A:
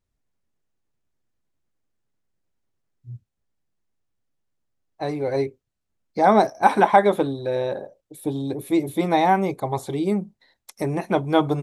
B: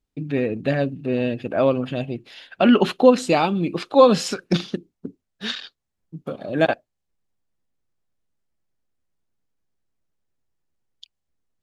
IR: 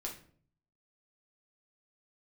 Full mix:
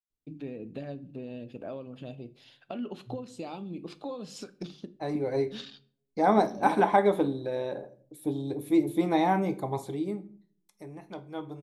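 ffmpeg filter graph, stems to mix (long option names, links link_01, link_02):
-filter_complex "[0:a]agate=range=-33dB:threshold=-46dB:ratio=3:detection=peak,volume=-11dB,afade=type=out:start_time=9.76:duration=0.51:silence=0.223872,asplit=2[link_01][link_02];[link_02]volume=-3.5dB[link_03];[1:a]equalizer=frequency=1700:width_type=o:width=1.2:gain=-8,bandreject=frequency=50:width_type=h:width=6,bandreject=frequency=100:width_type=h:width=6,bandreject=frequency=150:width_type=h:width=6,acompressor=threshold=-24dB:ratio=10,adelay=100,volume=-13.5dB,asplit=2[link_04][link_05];[link_05]volume=-8dB[link_06];[2:a]atrim=start_sample=2205[link_07];[link_03][link_06]amix=inputs=2:normalize=0[link_08];[link_08][link_07]afir=irnorm=-1:irlink=0[link_09];[link_01][link_04][link_09]amix=inputs=3:normalize=0,adynamicequalizer=threshold=0.01:dfrequency=270:dqfactor=1.5:tfrequency=270:tqfactor=1.5:attack=5:release=100:ratio=0.375:range=2.5:mode=boostabove:tftype=bell"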